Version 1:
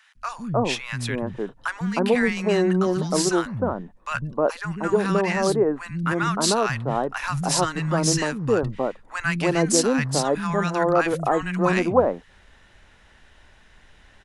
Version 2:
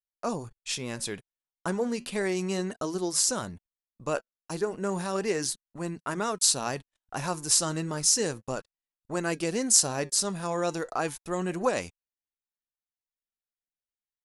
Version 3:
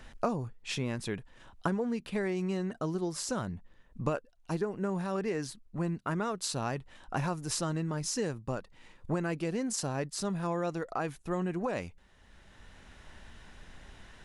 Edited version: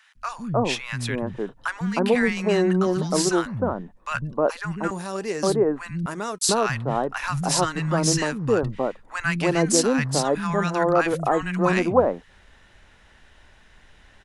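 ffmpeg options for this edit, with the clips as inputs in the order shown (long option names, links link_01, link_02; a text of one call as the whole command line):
ffmpeg -i take0.wav -i take1.wav -filter_complex "[1:a]asplit=2[link_01][link_02];[0:a]asplit=3[link_03][link_04][link_05];[link_03]atrim=end=4.912[link_06];[link_01]atrim=start=4.908:end=5.432[link_07];[link_04]atrim=start=5.428:end=6.062[link_08];[link_02]atrim=start=6.058:end=6.492[link_09];[link_05]atrim=start=6.488[link_10];[link_06][link_07]acrossfade=duration=0.004:curve1=hsin:curve2=hsin[link_11];[link_11][link_08]acrossfade=duration=0.004:curve1=hsin:curve2=hsin[link_12];[link_12][link_09]acrossfade=duration=0.004:curve1=hsin:curve2=hsin[link_13];[link_13][link_10]acrossfade=duration=0.004:curve1=hsin:curve2=hsin" out.wav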